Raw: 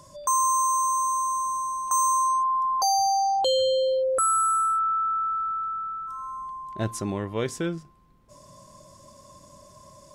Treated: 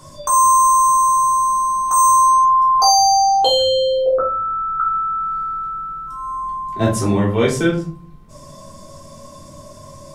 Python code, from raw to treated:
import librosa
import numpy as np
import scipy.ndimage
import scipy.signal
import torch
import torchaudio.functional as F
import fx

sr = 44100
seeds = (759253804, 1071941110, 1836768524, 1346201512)

y = fx.lowpass(x, sr, hz=1300.0, slope=24, at=(4.06, 4.8))
y = fx.room_shoebox(y, sr, seeds[0], volume_m3=250.0, walls='furnished', distance_m=3.6)
y = y * 10.0 ** (4.0 / 20.0)